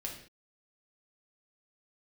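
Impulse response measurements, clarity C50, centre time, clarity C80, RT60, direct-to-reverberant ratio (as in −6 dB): 6.0 dB, 28 ms, 9.5 dB, non-exponential decay, −1.5 dB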